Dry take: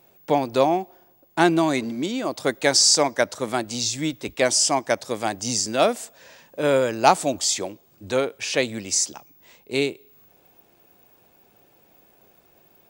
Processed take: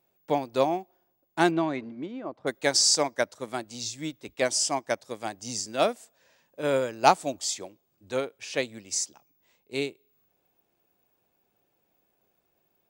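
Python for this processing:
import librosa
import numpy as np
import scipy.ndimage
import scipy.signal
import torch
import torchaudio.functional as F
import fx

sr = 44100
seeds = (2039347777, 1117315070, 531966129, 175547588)

y = fx.lowpass(x, sr, hz=fx.line((1.5, 3300.0), (2.46, 1300.0)), slope=12, at=(1.5, 2.46), fade=0.02)
y = fx.upward_expand(y, sr, threshold_db=-37.0, expansion=1.5)
y = F.gain(torch.from_numpy(y), -2.5).numpy()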